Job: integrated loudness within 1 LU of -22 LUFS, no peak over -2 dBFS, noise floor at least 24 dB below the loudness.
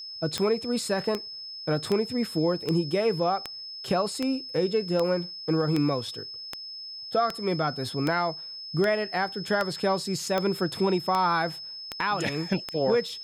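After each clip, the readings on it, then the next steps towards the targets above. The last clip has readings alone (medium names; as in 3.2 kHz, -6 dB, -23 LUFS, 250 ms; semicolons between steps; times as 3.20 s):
clicks found 17; steady tone 5.2 kHz; tone level -37 dBFS; loudness -27.5 LUFS; peak level -11.0 dBFS; loudness target -22.0 LUFS
-> de-click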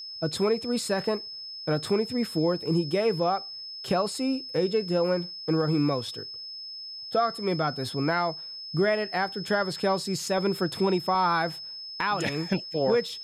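clicks found 0; steady tone 5.2 kHz; tone level -37 dBFS
-> band-stop 5.2 kHz, Q 30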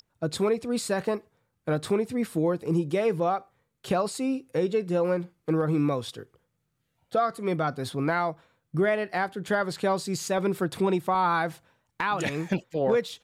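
steady tone not found; loudness -27.5 LUFS; peak level -14.0 dBFS; loudness target -22.0 LUFS
-> trim +5.5 dB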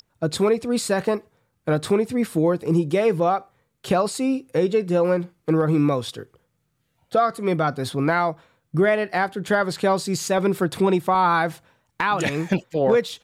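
loudness -22.0 LUFS; peak level -8.5 dBFS; noise floor -72 dBFS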